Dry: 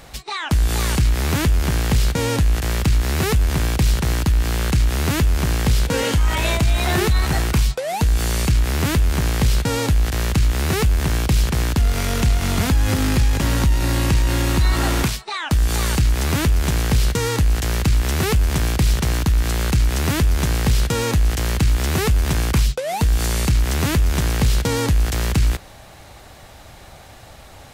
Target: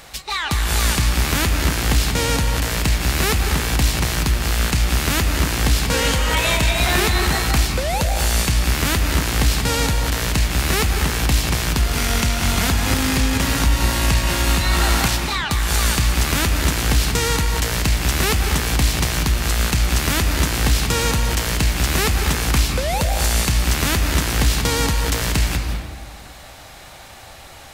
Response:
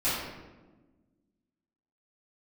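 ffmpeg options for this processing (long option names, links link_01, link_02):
-filter_complex "[0:a]tiltshelf=frequency=680:gain=-4.5,asplit=2[link_01][link_02];[1:a]atrim=start_sample=2205,adelay=149[link_03];[link_02][link_03]afir=irnorm=-1:irlink=0,volume=-15dB[link_04];[link_01][link_04]amix=inputs=2:normalize=0"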